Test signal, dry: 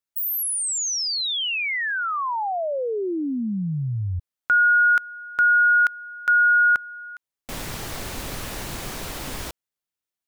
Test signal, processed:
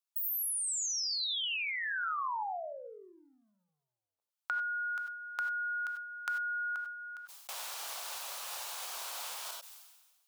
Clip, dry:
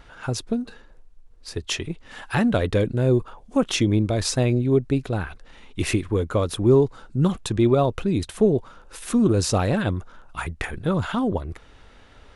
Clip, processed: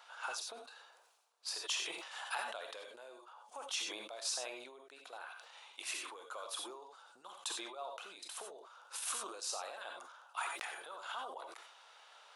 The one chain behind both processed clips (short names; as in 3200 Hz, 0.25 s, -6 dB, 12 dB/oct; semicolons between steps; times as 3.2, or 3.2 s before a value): bell 1900 Hz -8 dB 0.67 oct; compressor 6:1, threshold -32 dBFS; HPF 740 Hz 24 dB/oct; non-linear reverb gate 0.11 s rising, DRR 7 dB; sustainer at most 44 dB/s; gain -2.5 dB